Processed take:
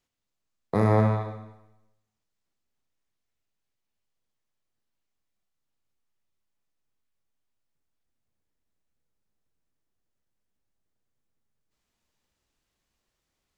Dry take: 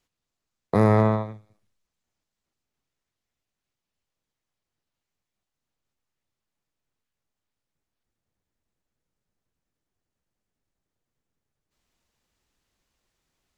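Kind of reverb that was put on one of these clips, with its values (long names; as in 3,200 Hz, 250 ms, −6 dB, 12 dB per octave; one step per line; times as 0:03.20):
four-comb reverb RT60 0.93 s, combs from 28 ms, DRR 5 dB
level −4 dB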